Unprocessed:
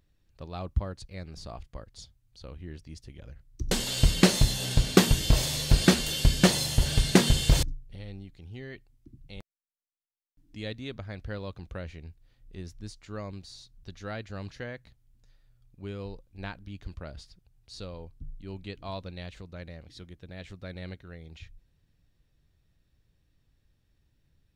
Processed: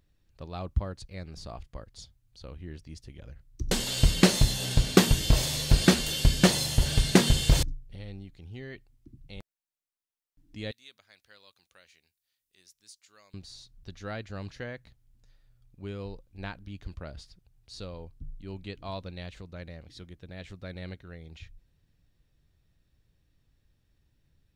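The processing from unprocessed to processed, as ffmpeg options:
-filter_complex "[0:a]asettb=1/sr,asplit=3[s0][s1][s2];[s0]atrim=end=10.714[s3];[s1]atrim=start=10.71:end=13.34,asetpts=PTS-STARTPTS,afade=t=in:d=0.004:c=qsin,afade=t=out:st=2.626:d=0.004:c=qsin,aderivative[s4];[s2]atrim=start=13.336[s5];[s3][s4]acrossfade=d=0.004:c1=hsin:c2=qsin[s6];[s6][s5]acrossfade=d=0.004:c1=qsin:c2=hsin"

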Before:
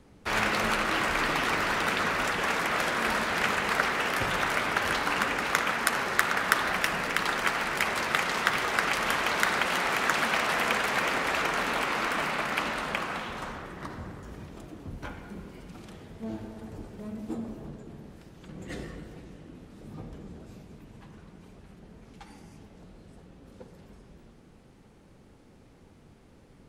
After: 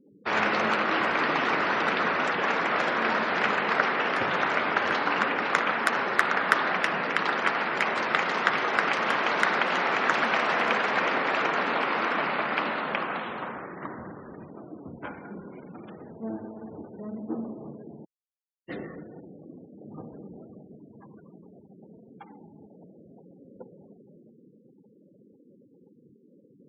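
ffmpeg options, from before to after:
-filter_complex "[0:a]asettb=1/sr,asplit=3[s0][s1][s2];[s0]atrim=end=15.254[s3];[s1]atrim=start=15.25:end=16.41,asetpts=PTS-STARTPTS,afade=t=in:d=0.004:c=qsin,afade=t=out:st=1.156:d=0.004:c=qsin,acompressor=mode=upward:threshold=0.0126:ratio=2.5:attack=3.2:release=140:knee=2.83:detection=peak[s4];[s2]atrim=start=16.406[s5];[s3][s4]acrossfade=d=0.004:c1=hsin:c2=qsin[s6];[s6][s5]acrossfade=d=0.004:c1=qsin:c2=hsin,asplit=3[s7][s8][s9];[s7]atrim=end=18.05,asetpts=PTS-STARTPTS,afade=t=out:st=18.046:d=0.004:c=hsin[s10];[s8]atrim=start=18.05:end=18.68,asetpts=PTS-STARTPTS,volume=0[s11];[s9]atrim=start=18.68,asetpts=PTS-STARTPTS,afade=t=in:d=0.004:c=hsin[s12];[s10][s11][s12]concat=n=3:v=0:a=1,highpass=200,aemphasis=mode=reproduction:type=75kf,afftfilt=real='re*gte(hypot(re,im),0.00398)':imag='im*gte(hypot(re,im),0.00398)':win_size=1024:overlap=0.75,volume=1.58"

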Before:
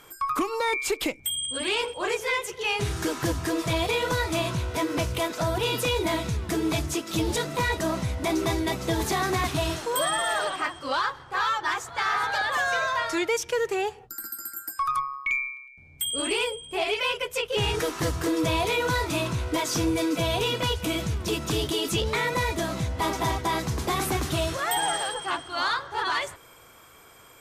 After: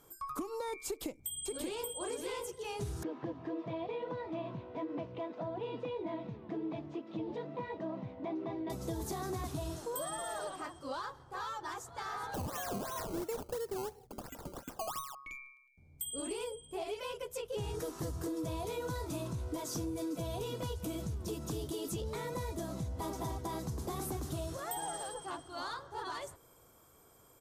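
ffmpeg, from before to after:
-filter_complex "[0:a]asplit=2[s0][s1];[s1]afade=t=in:st=0.87:d=0.01,afade=t=out:st=1.93:d=0.01,aecho=0:1:580|1160:0.749894|0.0749894[s2];[s0][s2]amix=inputs=2:normalize=0,asettb=1/sr,asplit=3[s3][s4][s5];[s3]atrim=end=3.034[s6];[s4]atrim=start=3.03:end=8.7,asetpts=PTS-STARTPTS,afade=t=in:d=0.004:c=qsin,afade=t=out:st=5.666:d=0.004:c=qsin,highpass=f=150:w=0.5412,highpass=f=150:w=1.3066,equalizer=f=170:t=q:w=4:g=-6,equalizer=f=380:t=q:w=4:g=-4,equalizer=f=1400:t=q:w=4:g=-8,lowpass=f=2800:w=0.5412,lowpass=f=2800:w=1.3066[s7];[s5]atrim=start=8.696[s8];[s6][s7]acrossfade=d=0.004:c1=hsin:c2=qsin[s9];[s9][s8]acrossfade=d=0.004:c1=qsin:c2=hsin,asettb=1/sr,asplit=3[s10][s11][s12];[s10]atrim=end=12.344[s13];[s11]atrim=start=12.34:end=15.15,asetpts=PTS-STARTPTS,afade=t=in:d=0.004:c=qsin,afade=t=out:st=2.806:d=0.004:c=qsin,acrusher=samples=17:mix=1:aa=0.000001:lfo=1:lforange=17:lforate=2.9[s14];[s12]atrim=start=15.146[s15];[s13][s14]acrossfade=d=0.004:c1=hsin:c2=qsin[s16];[s16][s15]acrossfade=d=0.004:c1=qsin:c2=hsin,equalizer=f=2300:w=0.66:g=-14.5,acompressor=threshold=0.0398:ratio=6,volume=0.473"

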